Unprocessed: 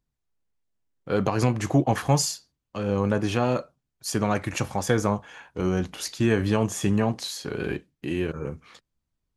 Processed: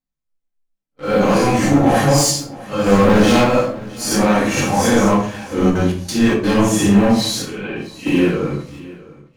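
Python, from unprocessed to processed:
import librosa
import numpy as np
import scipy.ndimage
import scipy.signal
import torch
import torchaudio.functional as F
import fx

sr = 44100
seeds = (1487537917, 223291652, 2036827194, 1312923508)

p1 = fx.phase_scramble(x, sr, seeds[0], window_ms=200)
p2 = fx.peak_eq(p1, sr, hz=68.0, db=-8.5, octaves=2.2)
p3 = fx.leveller(p2, sr, passes=2, at=(2.86, 3.44))
p4 = fx.level_steps(p3, sr, step_db=10)
p5 = p3 + (p4 * librosa.db_to_amplitude(-1.5))
p6 = fx.leveller(p5, sr, passes=3)
p7 = fx.step_gate(p6, sr, bpm=180, pattern='.xxx..xx.', floor_db=-24.0, edge_ms=4.5, at=(5.69, 6.43), fade=0.02)
p8 = fx.ladder_lowpass(p7, sr, hz=3300.0, resonance_pct=50, at=(7.42, 8.06))
p9 = fx.echo_feedback(p8, sr, ms=661, feedback_pct=31, wet_db=-20.0)
p10 = fx.room_shoebox(p9, sr, seeds[1], volume_m3=420.0, walls='furnished', distance_m=2.1)
y = p10 * librosa.db_to_amplitude(-5.0)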